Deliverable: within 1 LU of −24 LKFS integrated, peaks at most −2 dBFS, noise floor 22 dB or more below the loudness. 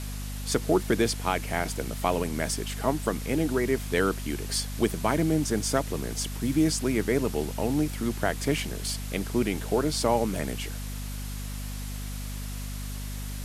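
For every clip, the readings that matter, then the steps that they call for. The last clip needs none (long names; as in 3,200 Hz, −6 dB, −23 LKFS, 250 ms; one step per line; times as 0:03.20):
mains hum 50 Hz; hum harmonics up to 250 Hz; level of the hum −32 dBFS; background noise floor −35 dBFS; target noise floor −51 dBFS; integrated loudness −28.5 LKFS; sample peak −8.5 dBFS; target loudness −24.0 LKFS
→ mains-hum notches 50/100/150/200/250 Hz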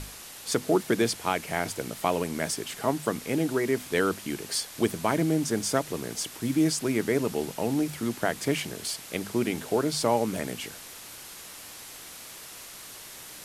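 mains hum none found; background noise floor −44 dBFS; target noise floor −50 dBFS
→ broadband denoise 6 dB, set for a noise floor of −44 dBFS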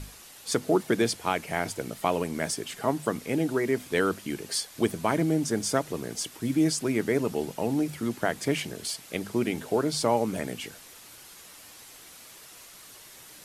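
background noise floor −49 dBFS; target noise floor −51 dBFS
→ broadband denoise 6 dB, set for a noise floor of −49 dBFS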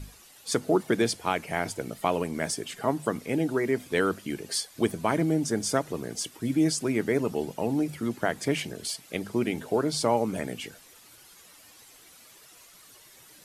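background noise floor −54 dBFS; integrated loudness −28.5 LKFS; sample peak −9.5 dBFS; target loudness −24.0 LKFS
→ level +4.5 dB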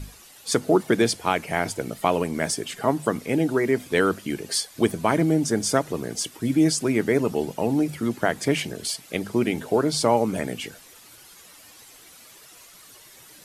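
integrated loudness −24.0 LKFS; sample peak −5.0 dBFS; background noise floor −49 dBFS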